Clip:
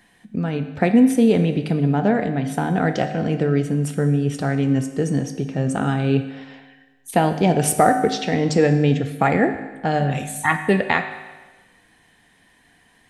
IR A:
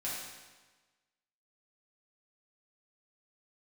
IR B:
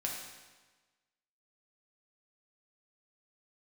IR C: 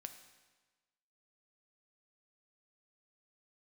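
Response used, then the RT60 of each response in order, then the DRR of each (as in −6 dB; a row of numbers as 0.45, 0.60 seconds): C; 1.3, 1.3, 1.3 seconds; −8.0, −2.0, 7.0 decibels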